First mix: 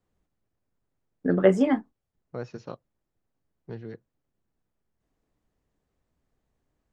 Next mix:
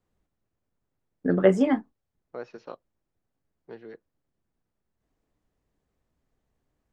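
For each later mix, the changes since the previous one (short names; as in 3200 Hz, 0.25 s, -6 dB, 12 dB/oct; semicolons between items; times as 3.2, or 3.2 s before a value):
second voice: add BPF 350–4200 Hz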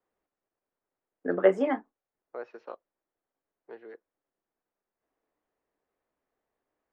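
master: add three-band isolator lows -21 dB, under 320 Hz, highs -13 dB, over 2700 Hz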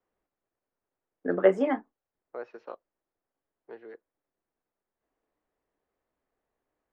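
master: add low shelf 130 Hz +6.5 dB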